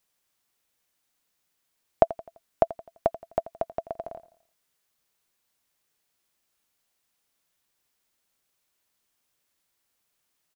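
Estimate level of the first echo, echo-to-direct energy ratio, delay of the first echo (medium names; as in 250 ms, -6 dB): -17.0 dB, -16.0 dB, 85 ms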